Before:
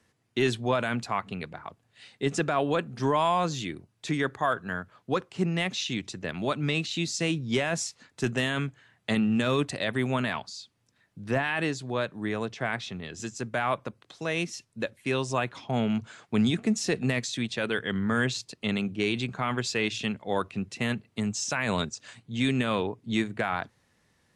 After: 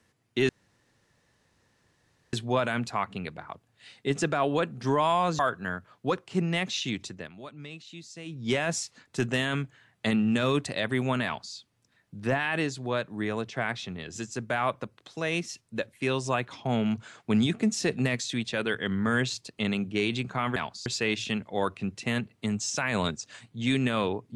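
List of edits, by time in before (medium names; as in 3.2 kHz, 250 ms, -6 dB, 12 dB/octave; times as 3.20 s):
0.49 s: insert room tone 1.84 s
3.55–4.43 s: delete
6.08–7.58 s: dip -15 dB, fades 0.29 s
10.29–10.59 s: copy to 19.60 s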